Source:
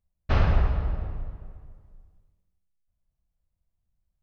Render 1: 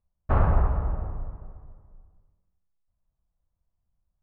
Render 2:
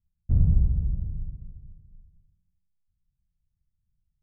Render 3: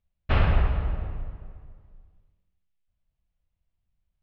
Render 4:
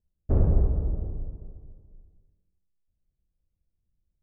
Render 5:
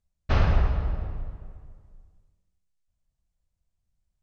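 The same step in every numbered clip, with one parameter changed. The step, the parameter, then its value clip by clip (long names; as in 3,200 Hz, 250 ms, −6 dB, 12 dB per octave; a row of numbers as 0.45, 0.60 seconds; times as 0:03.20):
low-pass with resonance, frequency: 1,100, 160, 3,000, 400, 7,700 Hertz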